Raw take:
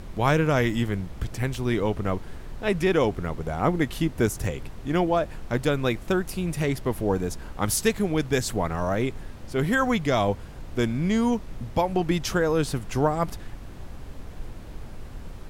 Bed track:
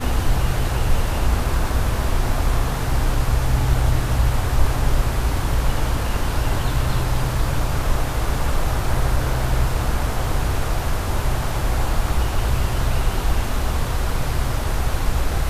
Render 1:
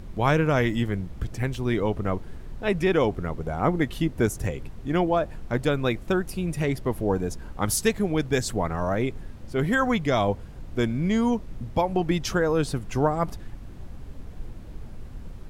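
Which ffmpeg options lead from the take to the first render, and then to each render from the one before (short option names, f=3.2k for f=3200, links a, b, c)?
-af "afftdn=nr=6:nf=-40"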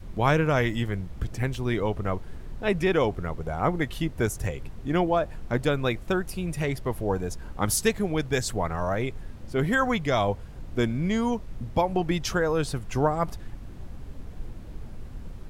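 -af "adynamicequalizer=threshold=0.0126:dfrequency=260:dqfactor=1:tfrequency=260:tqfactor=1:attack=5:release=100:ratio=0.375:range=3:mode=cutabove:tftype=bell"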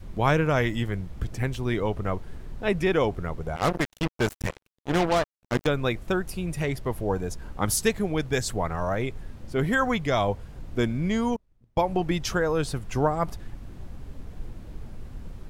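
-filter_complex "[0:a]asettb=1/sr,asplit=3[a][b][c];[a]atrim=end=3.564[d];[b]atrim=start=3.56:end=5.67,asetpts=PTS-STARTPTS,afade=t=in:d=0.004:c=qsin,afade=t=out:st=2.106:d=0.004:c=qsin,acrusher=bits=3:mix=0:aa=0.5[e];[c]atrim=start=5.666[f];[d][e]acrossfade=d=0.004:c1=hsin:c2=qsin[g];[g][f]acrossfade=d=0.004:c1=qsin:c2=hsin,asettb=1/sr,asplit=3[h][i][j];[h]atrim=end=11.364[k];[i]atrim=start=11.36:end=11.83,asetpts=PTS-STARTPTS,afade=t=in:d=0.004:c=qsin,afade=t=out:st=0.466:d=0.004:c=qsin,agate=range=-29dB:threshold=-28dB:ratio=16:release=100:detection=peak[l];[j]atrim=start=11.826[m];[k][l]acrossfade=d=0.004:c1=hsin:c2=qsin[n];[n][m]acrossfade=d=0.004:c1=qsin:c2=hsin"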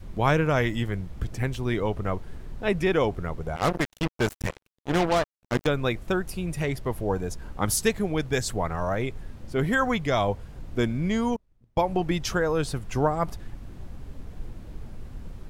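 -af anull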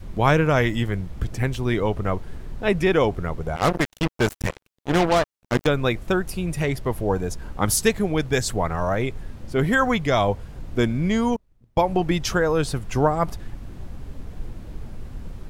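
-af "volume=4dB"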